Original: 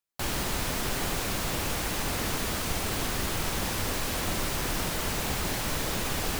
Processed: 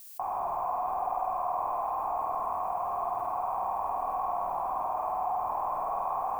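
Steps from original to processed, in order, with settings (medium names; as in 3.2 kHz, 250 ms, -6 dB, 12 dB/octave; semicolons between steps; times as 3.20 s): cascade formant filter a; peaking EQ 950 Hz +12 dB 1.4 oct; added noise violet -68 dBFS; on a send: flutter echo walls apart 8.7 m, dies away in 1.2 s; on the sum: level flattener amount 50%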